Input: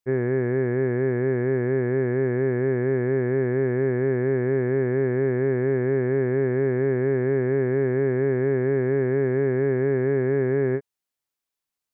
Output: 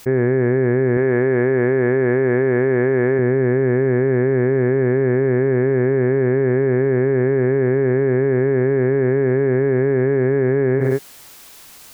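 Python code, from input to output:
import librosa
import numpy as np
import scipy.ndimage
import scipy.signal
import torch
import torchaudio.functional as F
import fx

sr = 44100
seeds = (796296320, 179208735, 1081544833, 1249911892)

y = fx.low_shelf(x, sr, hz=280.0, db=-8.5, at=(0.97, 3.19))
y = fx.echo_feedback(y, sr, ms=61, feedback_pct=49, wet_db=-22.5)
y = fx.env_flatten(y, sr, amount_pct=100)
y = y * 10.0 ** (4.0 / 20.0)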